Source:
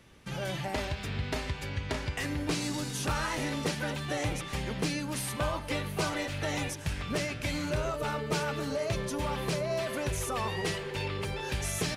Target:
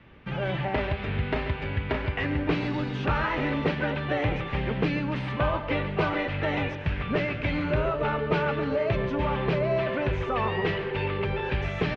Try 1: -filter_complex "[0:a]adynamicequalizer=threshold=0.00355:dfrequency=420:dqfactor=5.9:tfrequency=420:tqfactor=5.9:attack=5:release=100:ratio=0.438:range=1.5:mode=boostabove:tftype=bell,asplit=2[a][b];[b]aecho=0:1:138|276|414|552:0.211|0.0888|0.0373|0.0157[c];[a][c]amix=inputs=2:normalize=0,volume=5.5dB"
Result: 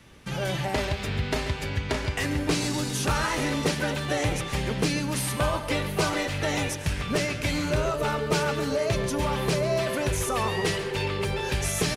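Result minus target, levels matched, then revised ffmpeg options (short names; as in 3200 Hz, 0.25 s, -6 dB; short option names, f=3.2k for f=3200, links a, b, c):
4000 Hz band +6.5 dB
-filter_complex "[0:a]adynamicequalizer=threshold=0.00355:dfrequency=420:dqfactor=5.9:tfrequency=420:tqfactor=5.9:attack=5:release=100:ratio=0.438:range=1.5:mode=boostabove:tftype=bell,lowpass=f=2.9k:w=0.5412,lowpass=f=2.9k:w=1.3066,asplit=2[a][b];[b]aecho=0:1:138|276|414|552:0.211|0.0888|0.0373|0.0157[c];[a][c]amix=inputs=2:normalize=0,volume=5.5dB"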